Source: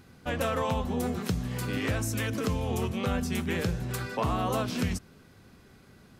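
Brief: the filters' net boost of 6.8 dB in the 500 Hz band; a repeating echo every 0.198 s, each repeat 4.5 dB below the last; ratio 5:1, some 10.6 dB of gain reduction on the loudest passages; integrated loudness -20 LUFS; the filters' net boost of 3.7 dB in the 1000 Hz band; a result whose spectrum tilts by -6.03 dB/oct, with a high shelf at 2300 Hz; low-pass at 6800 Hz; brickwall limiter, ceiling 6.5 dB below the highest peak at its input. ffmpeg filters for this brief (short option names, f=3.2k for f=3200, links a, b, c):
-af "lowpass=6.8k,equalizer=f=500:t=o:g=7.5,equalizer=f=1k:t=o:g=3,highshelf=f=2.3k:g=-4.5,acompressor=threshold=-33dB:ratio=5,alimiter=level_in=4dB:limit=-24dB:level=0:latency=1,volume=-4dB,aecho=1:1:198|396|594|792|990|1188|1386|1584|1782:0.596|0.357|0.214|0.129|0.0772|0.0463|0.0278|0.0167|0.01,volume=16dB"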